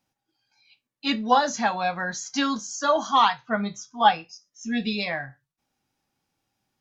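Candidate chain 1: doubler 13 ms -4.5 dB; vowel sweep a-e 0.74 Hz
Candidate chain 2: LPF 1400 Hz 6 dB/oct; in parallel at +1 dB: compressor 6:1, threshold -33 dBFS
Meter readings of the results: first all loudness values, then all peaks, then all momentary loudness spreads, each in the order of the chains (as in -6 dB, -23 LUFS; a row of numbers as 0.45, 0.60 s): -32.0, -24.0 LUFS; -12.5, -6.5 dBFS; 15, 10 LU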